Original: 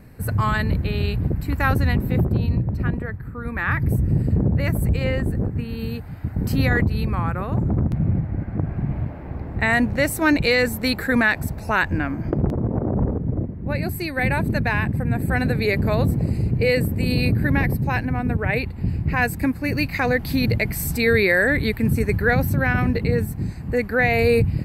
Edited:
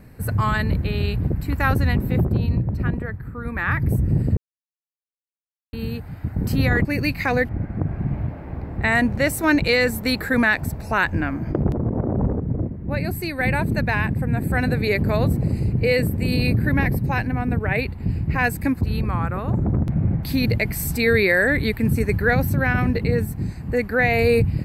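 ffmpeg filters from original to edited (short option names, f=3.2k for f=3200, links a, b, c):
-filter_complex "[0:a]asplit=7[a][b][c][d][e][f][g];[a]atrim=end=4.37,asetpts=PTS-STARTPTS,afade=t=out:st=4.366:d=0.004:c=hsin[h];[b]atrim=start=4.37:end=5.73,asetpts=PTS-STARTPTS,volume=0[i];[c]atrim=start=5.73:end=6.852,asetpts=PTS-STARTPTS,afade=t=in:d=0.004:c=hsin[j];[d]atrim=start=19.588:end=20.232[k];[e]atrim=start=8.268:end=19.592[l];[f]atrim=start=6.848:end=8.272[m];[g]atrim=start=20.228[n];[h][i][j]concat=n=3:v=0:a=1[o];[o][k]acrossfade=d=0.004:c1=hsin:c2=hsin[p];[p][l]acrossfade=d=0.004:c1=hsin:c2=hsin[q];[q][m]acrossfade=d=0.004:c1=hsin:c2=hsin[r];[r][n]acrossfade=d=0.004:c1=hsin:c2=hsin"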